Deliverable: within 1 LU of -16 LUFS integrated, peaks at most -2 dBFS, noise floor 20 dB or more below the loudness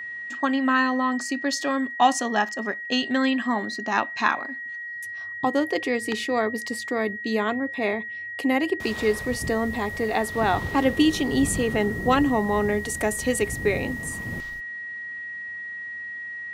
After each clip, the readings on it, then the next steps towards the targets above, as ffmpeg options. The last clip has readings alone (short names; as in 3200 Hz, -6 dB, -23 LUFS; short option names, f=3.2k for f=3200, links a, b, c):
steady tone 1900 Hz; tone level -32 dBFS; loudness -25.0 LUFS; peak -5.0 dBFS; loudness target -16.0 LUFS
-> -af "bandreject=f=1.9k:w=30"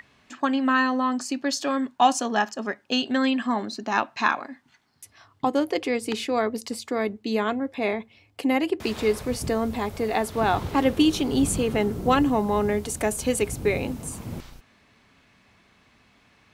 steady tone none; loudness -25.0 LUFS; peak -6.0 dBFS; loudness target -16.0 LUFS
-> -af "volume=9dB,alimiter=limit=-2dB:level=0:latency=1"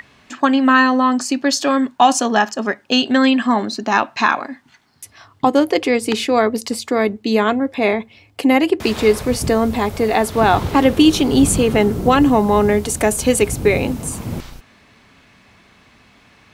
loudness -16.5 LUFS; peak -2.0 dBFS; noise floor -52 dBFS